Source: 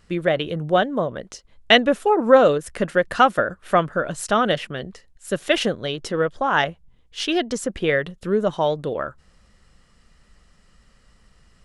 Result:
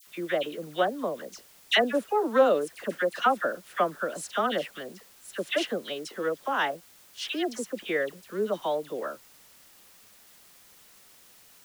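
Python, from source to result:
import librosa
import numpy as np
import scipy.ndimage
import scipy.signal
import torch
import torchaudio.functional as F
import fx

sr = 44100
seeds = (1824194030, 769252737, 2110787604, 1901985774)

y = scipy.signal.sosfilt(scipy.signal.butter(4, 220.0, 'highpass', fs=sr, output='sos'), x)
y = fx.quant_dither(y, sr, seeds[0], bits=8, dither='triangular')
y = fx.dispersion(y, sr, late='lows', ms=71.0, hz=1600.0)
y = y * 10.0 ** (-7.5 / 20.0)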